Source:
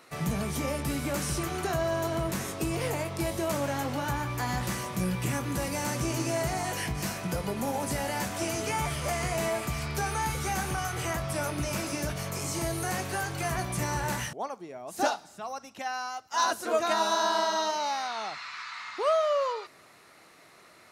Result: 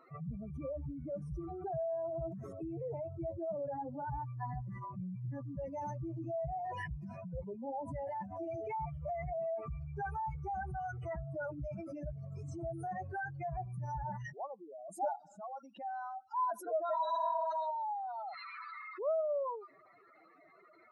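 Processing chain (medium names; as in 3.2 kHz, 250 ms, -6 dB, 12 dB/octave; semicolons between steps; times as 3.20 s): spectral contrast enhancement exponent 3.7; dynamic bell 220 Hz, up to -7 dB, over -47 dBFS, Q 0.9; trim -6 dB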